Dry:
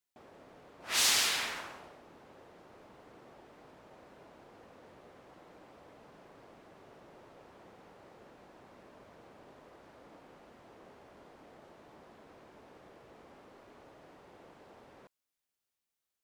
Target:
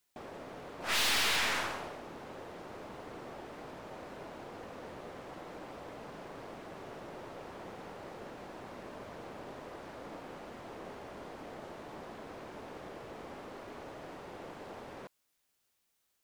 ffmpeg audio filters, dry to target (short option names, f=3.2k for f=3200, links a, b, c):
-filter_complex "[0:a]acrossover=split=4400[a][b];[b]acompressor=threshold=-48dB:ratio=4:attack=1:release=60[c];[a][c]amix=inputs=2:normalize=0,aeval=exprs='(tanh(100*val(0)+0.5)-tanh(0.5))/100':c=same,volume=12dB"